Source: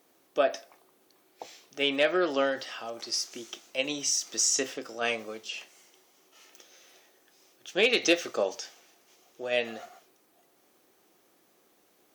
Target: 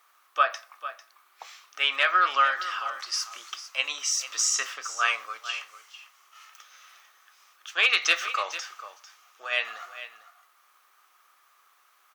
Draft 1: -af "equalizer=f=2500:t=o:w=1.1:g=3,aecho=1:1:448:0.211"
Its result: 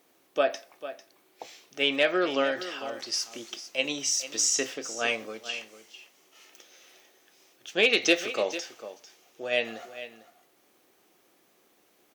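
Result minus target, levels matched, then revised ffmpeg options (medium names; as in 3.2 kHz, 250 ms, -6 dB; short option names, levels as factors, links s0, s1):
1 kHz band -8.0 dB
-af "highpass=f=1200:t=q:w=5.3,equalizer=f=2500:t=o:w=1.1:g=3,aecho=1:1:448:0.211"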